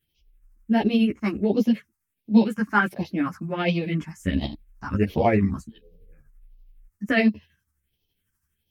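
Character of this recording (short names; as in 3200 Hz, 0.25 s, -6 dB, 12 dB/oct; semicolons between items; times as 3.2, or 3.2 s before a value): phasing stages 4, 1.4 Hz, lowest notch 550–1500 Hz; tremolo triangle 12 Hz, depth 55%; a shimmering, thickened sound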